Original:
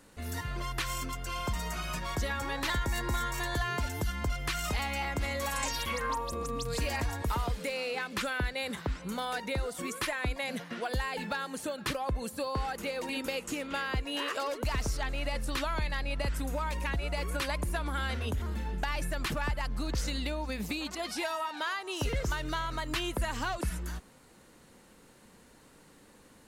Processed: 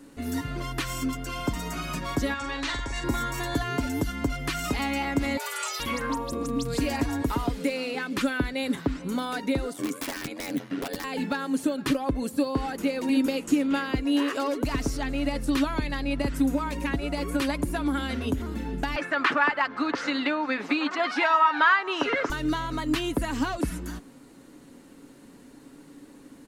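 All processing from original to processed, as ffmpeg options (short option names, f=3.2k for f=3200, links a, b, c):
-filter_complex "[0:a]asettb=1/sr,asplit=3[a][b][c];[a]atrim=end=2.344[d];[b]atrim=start=2.34:end=3.04,asetpts=PTS-STARTPTS,afade=t=in:d=0.004:c=qsin,afade=t=out:st=0.696:d=0.004:c=qsin,lowpass=f=7.8k:w=0.5412,lowpass=f=7.8k:w=1.3066,equalizer=f=220:w=0.47:g=-13.5,asplit=2[e][f];[f]adelay=44,volume=-6dB[g];[e][g]amix=inputs=2:normalize=0,atrim=end_sample=30870[h];[c]atrim=start=3.036[i];[d][h]acrossfade=d=0.004:c1=hsin:c2=qsin[j];[j][i]acrossfade=d=0.004:c1=qsin:c2=hsin,asettb=1/sr,asplit=3[k][l][m];[k]atrim=end=5.374[n];[l]atrim=start=5.37:end=5.8,asetpts=PTS-STARTPTS,afade=t=in:d=0.004:c=qsin,afade=t=out:st=0.426:d=0.004:c=qsin,highpass=f=360:p=1,afreqshift=340[o];[m]atrim=start=5.796[p];[n][o]acrossfade=d=0.004:c1=hsin:c2=qsin[q];[q][p]acrossfade=d=0.004:c1=qsin:c2=hsin,asettb=1/sr,asplit=3[r][s][t];[r]atrim=end=9.734[u];[s]atrim=start=9.73:end=11.04,asetpts=PTS-STARTPTS,afade=t=in:d=0.004:c=qsin,afade=t=out:st=1.306:d=0.004:c=qsin,highpass=f=140:w=0.5412,highpass=f=140:w=1.3066,aeval=exprs='val(0)*sin(2*PI*45*n/s)':c=same,aeval=exprs='(mod(26.6*val(0)+1,2)-1)/26.6':c=same[v];[t]atrim=start=11.036[w];[u][v]acrossfade=d=0.004:c1=hsin:c2=qsin[x];[x][w]acrossfade=d=0.004:c1=qsin:c2=hsin,asettb=1/sr,asplit=3[y][z][aa];[y]atrim=end=18.964[ab];[z]atrim=start=18.96:end=22.3,asetpts=PTS-STARTPTS,afade=t=in:d=0.004:c=qsin,afade=t=out:st=3.336:d=0.004:c=qsin,highpass=380,lowpass=4.3k,equalizer=f=1.4k:t=o:w=1.8:g=14.5[ac];[aa]atrim=start=22.296[ad];[ab][ac]acrossfade=d=0.004:c1=hsin:c2=qsin[ae];[ae][ad]acrossfade=d=0.004:c1=qsin:c2=hsin,equalizer=f=280:w=1.7:g=13.5,aecho=1:1:7.2:0.33,volume=1.5dB"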